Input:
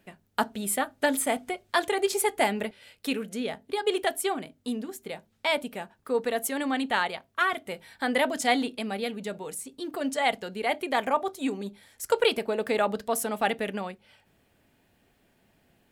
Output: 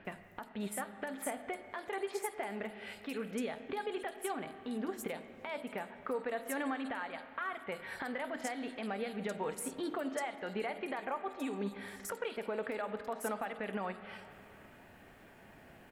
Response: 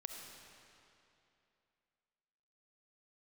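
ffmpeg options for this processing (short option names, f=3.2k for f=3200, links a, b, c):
-filter_complex "[0:a]equalizer=f=1.6k:t=o:w=2.8:g=7,acompressor=threshold=-39dB:ratio=6,alimiter=level_in=9dB:limit=-24dB:level=0:latency=1:release=138,volume=-9dB,acrossover=split=3800[a][b];[b]adelay=50[c];[a][c]amix=inputs=2:normalize=0,asplit=2[d][e];[1:a]atrim=start_sample=2205,lowpass=2.6k[f];[e][f]afir=irnorm=-1:irlink=0,volume=0.5dB[g];[d][g]amix=inputs=2:normalize=0,volume=2dB"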